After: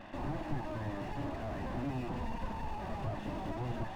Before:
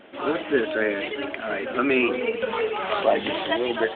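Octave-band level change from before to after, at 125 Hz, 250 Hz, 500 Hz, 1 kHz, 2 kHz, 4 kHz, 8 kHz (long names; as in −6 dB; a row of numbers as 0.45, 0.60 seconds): +7.5 dB, −11.5 dB, −20.0 dB, −12.0 dB, −21.5 dB, −22.5 dB, can't be measured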